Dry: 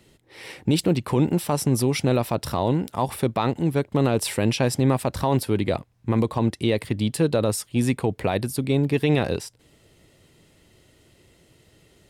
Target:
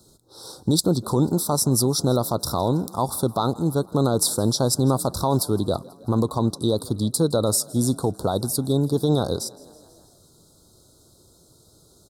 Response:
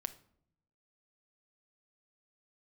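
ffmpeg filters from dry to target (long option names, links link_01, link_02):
-filter_complex "[0:a]asuperstop=centerf=2300:order=12:qfactor=1,highshelf=frequency=2800:gain=8.5,asplit=6[link_01][link_02][link_03][link_04][link_05][link_06];[link_02]adelay=163,afreqshift=38,volume=-23dB[link_07];[link_03]adelay=326,afreqshift=76,volume=-26.9dB[link_08];[link_04]adelay=489,afreqshift=114,volume=-30.8dB[link_09];[link_05]adelay=652,afreqshift=152,volume=-34.6dB[link_10];[link_06]adelay=815,afreqshift=190,volume=-38.5dB[link_11];[link_01][link_07][link_08][link_09][link_10][link_11]amix=inputs=6:normalize=0"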